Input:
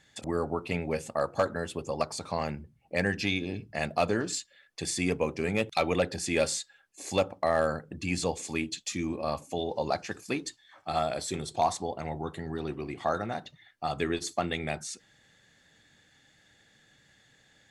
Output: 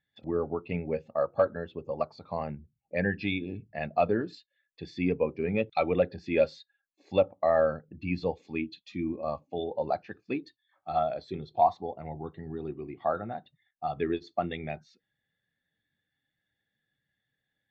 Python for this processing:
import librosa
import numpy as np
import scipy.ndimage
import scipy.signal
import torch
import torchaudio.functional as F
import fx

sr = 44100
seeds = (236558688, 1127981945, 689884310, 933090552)

y = scipy.signal.sosfilt(scipy.signal.butter(4, 4400.0, 'lowpass', fs=sr, output='sos'), x)
y = fx.spectral_expand(y, sr, expansion=1.5)
y = y * 10.0 ** (4.0 / 20.0)